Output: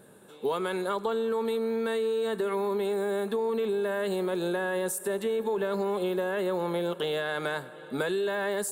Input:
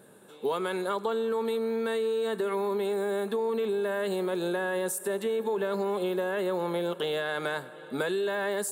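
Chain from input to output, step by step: low shelf 71 Hz +10.5 dB

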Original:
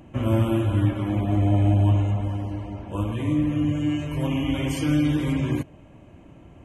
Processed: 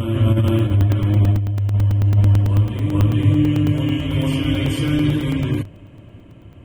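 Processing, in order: thirty-one-band EQ 100 Hz +11 dB, 800 Hz -9 dB, 3150 Hz +5 dB, 6300 Hz -8 dB; negative-ratio compressor -15 dBFS, ratio -0.5; reverse echo 0.436 s -4 dB; crackling interface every 0.11 s, samples 128, zero, from 0.48

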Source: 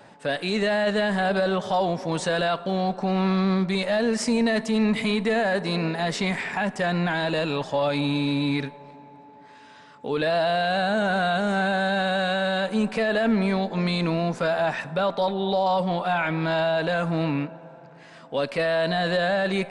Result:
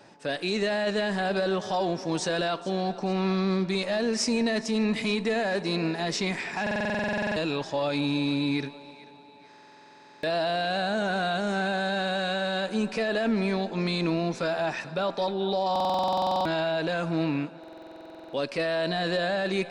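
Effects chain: bell 5500 Hz +9.5 dB 0.7 oct; small resonant body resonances 340/2500 Hz, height 7 dB, ringing for 30 ms; on a send: thinning echo 0.439 s, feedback 43%, high-pass 530 Hz, level -17.5 dB; on the sum: stuck buffer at 6.62/9.49/15.71/17.59, samples 2048, times 15; gain -5 dB

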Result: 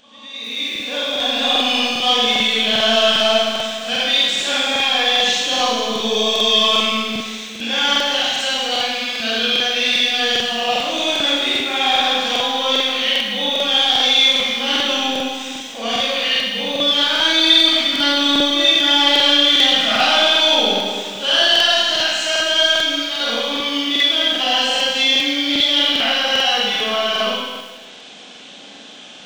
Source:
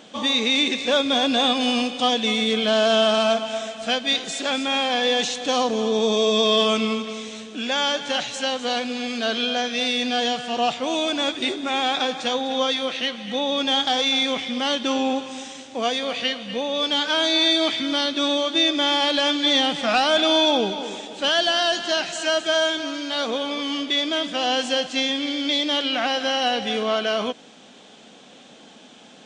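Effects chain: opening faded in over 1.94 s; in parallel at -11.5 dB: hard clip -21 dBFS, distortion -9 dB; on the sum: bell 3000 Hz +8 dB 2.6 oct; de-hum 65.27 Hz, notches 36; on a send: reverse echo 0.108 s -18.5 dB; on the sum: Schroeder reverb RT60 1.3 s, combs from 31 ms, DRR -7.5 dB; upward compressor, threshold -24 dBFS; crackling interface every 0.40 s, samples 2048, repeat, from 0.71; lo-fi delay 0.103 s, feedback 55%, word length 4-bit, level -14.5 dB; gain -9 dB

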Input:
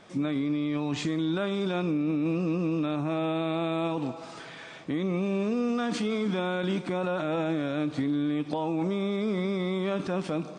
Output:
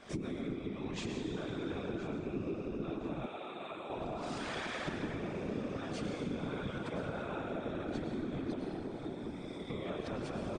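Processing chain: recorder AGC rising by 70 dB/s; 8.55–9.7 differentiator; gate -36 dBFS, range -7 dB; plate-style reverb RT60 3.7 s, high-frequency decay 0.5×, pre-delay 85 ms, DRR -1 dB; compressor 4:1, threshold -43 dBFS, peak gain reduction 20.5 dB; feedback echo 1.02 s, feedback 33%, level -16.5 dB; whisperiser; 3.26–3.9 HPF 730 Hz 6 dB/oct; gain +3 dB

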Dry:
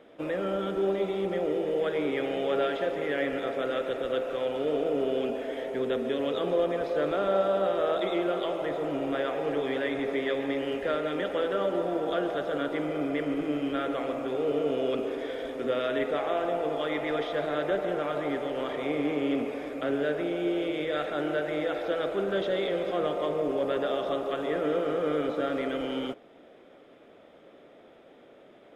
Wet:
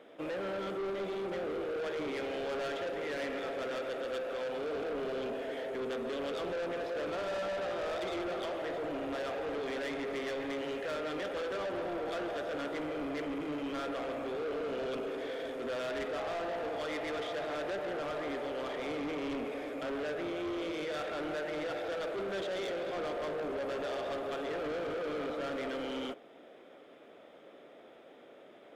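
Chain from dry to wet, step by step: low shelf 150 Hz -12 dB; soft clip -33.5 dBFS, distortion -8 dB

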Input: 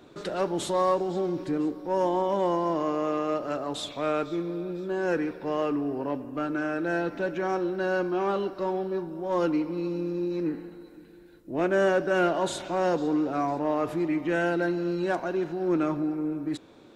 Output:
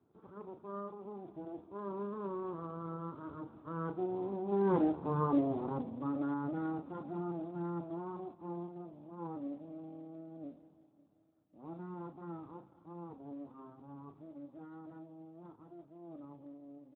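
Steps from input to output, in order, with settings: minimum comb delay 0.79 ms; Doppler pass-by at 5.02, 28 m/s, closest 19 m; Gaussian blur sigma 7.7 samples; doubler 35 ms -8.5 dB; gain +1 dB; Speex 11 kbps 8000 Hz

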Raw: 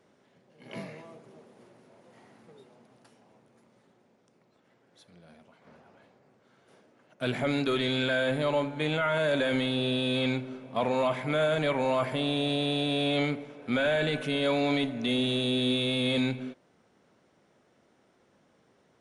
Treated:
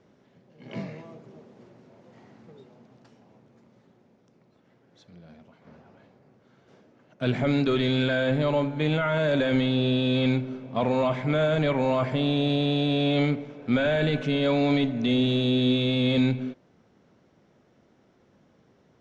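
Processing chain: steep low-pass 7000 Hz 36 dB/oct; low shelf 320 Hz +9.5 dB

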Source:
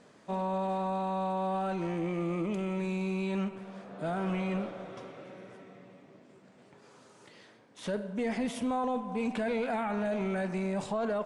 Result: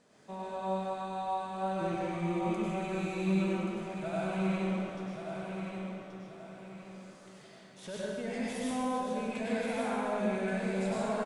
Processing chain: high shelf 4700 Hz +7 dB; 1.81–4.08 phaser 2 Hz, delay 1.5 ms, feedback 54%; feedback echo 1.129 s, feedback 34%, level -6 dB; reverb RT60 1.7 s, pre-delay 88 ms, DRR -6 dB; gain -9 dB

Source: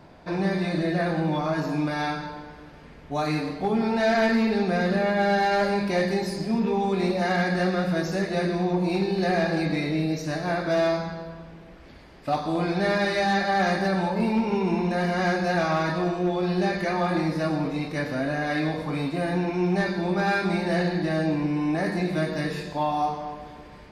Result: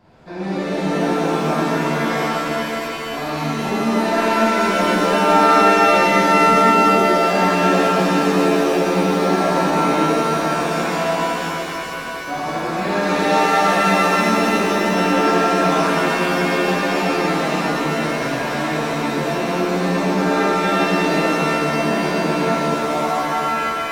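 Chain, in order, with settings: shimmer reverb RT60 3.7 s, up +7 st, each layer -2 dB, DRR -9 dB; gain -7 dB

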